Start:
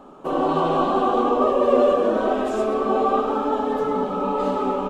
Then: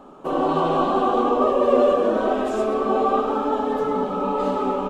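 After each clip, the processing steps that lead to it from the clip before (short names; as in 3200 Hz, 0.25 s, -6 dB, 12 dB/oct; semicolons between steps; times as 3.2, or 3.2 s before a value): nothing audible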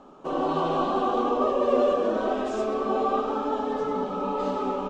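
synth low-pass 6100 Hz, resonance Q 1.6; gain -5 dB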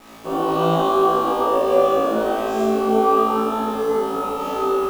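requantised 8-bit, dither none; flutter echo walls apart 3.1 m, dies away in 1.1 s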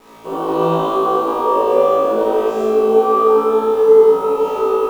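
small resonant body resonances 440/970 Hz, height 13 dB, ringing for 65 ms; reverb RT60 0.60 s, pre-delay 47 ms, DRR 1.5 dB; gain -3 dB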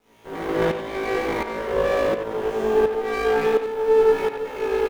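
minimum comb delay 0.32 ms; tremolo saw up 1.4 Hz, depth 80%; speakerphone echo 90 ms, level -7 dB; gain -3.5 dB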